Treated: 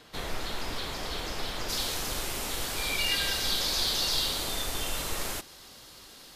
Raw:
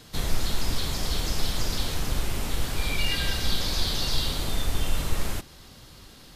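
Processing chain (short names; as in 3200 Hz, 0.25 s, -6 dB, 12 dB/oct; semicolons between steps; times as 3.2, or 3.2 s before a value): tone controls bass -12 dB, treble -9 dB, from 1.68 s treble +3 dB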